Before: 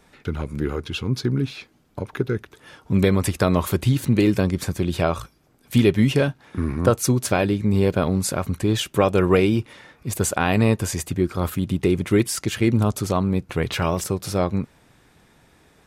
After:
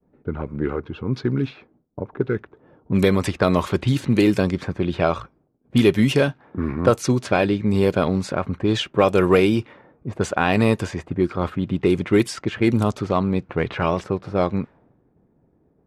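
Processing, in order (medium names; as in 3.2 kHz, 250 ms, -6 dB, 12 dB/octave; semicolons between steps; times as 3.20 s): expander -52 dBFS; level-controlled noise filter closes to 400 Hz, open at -13.5 dBFS; bass shelf 110 Hz -10 dB; in parallel at -8.5 dB: hard clipper -12.5 dBFS, distortion -16 dB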